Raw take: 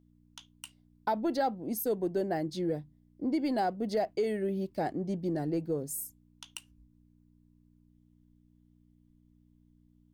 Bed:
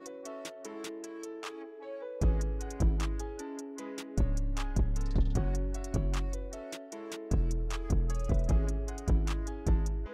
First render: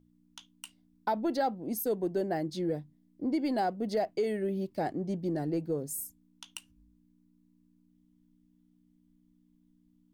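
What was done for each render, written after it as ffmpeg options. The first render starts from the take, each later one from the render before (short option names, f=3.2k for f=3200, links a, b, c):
-af "bandreject=f=60:t=h:w=4,bandreject=f=120:t=h:w=4"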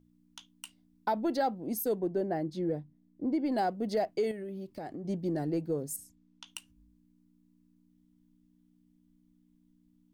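-filter_complex "[0:a]asettb=1/sr,asplit=3[a][b][c];[a]atrim=end=1.994[d];[b]atrim=start=1.99:end=3.52,asetpts=PTS-STARTPTS,afade=t=in:d=0.004:c=qsin,afade=t=out:st=1.526:d=0.004:c=qsin,highshelf=f=2.4k:g=-10.5[e];[c]atrim=start=3.516[f];[d][e]acrossfade=d=0.004:c1=hsin:c2=qsin[g];[g][f]acrossfade=d=0.004:c1=qsin:c2=hsin,asettb=1/sr,asplit=3[h][i][j];[h]atrim=end=4.314[k];[i]atrim=start=4.31:end=5.05,asetpts=PTS-STARTPTS,afade=t=in:d=0.004:c=qsin,afade=t=out:st=0.736:d=0.004:c=qsin,acompressor=threshold=-37dB:ratio=6:attack=3.2:release=140:knee=1:detection=peak[l];[j]atrim=start=5.046[m];[k][l]acrossfade=d=0.004:c1=hsin:c2=qsin[n];[n][m]acrossfade=d=0.004:c1=qsin:c2=hsin,asettb=1/sr,asplit=3[o][p][q];[o]atrim=end=5.964[r];[p]atrim=start=5.96:end=6.47,asetpts=PTS-STARTPTS,afade=t=in:d=0.004:c=qsin,afade=t=out:st=0.506:d=0.004:c=qsin,lowpass=5.7k[s];[q]atrim=start=6.466[t];[r][s]acrossfade=d=0.004:c1=hsin:c2=qsin[u];[u][t]acrossfade=d=0.004:c1=qsin:c2=hsin"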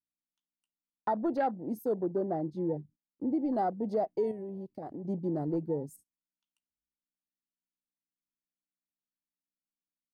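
-af "afwtdn=0.0112,agate=range=-25dB:threshold=-54dB:ratio=16:detection=peak"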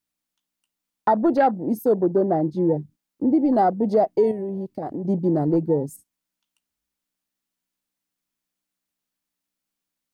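-af "volume=11.5dB"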